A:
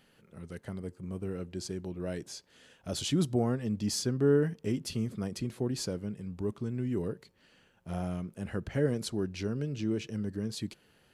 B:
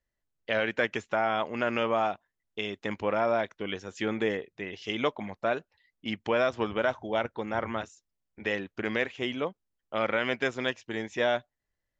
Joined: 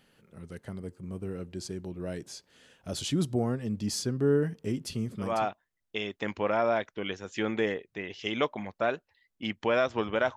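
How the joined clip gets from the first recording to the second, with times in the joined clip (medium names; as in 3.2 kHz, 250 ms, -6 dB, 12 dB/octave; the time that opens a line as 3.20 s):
A
5.34 s: go over to B from 1.97 s, crossfade 0.32 s equal-power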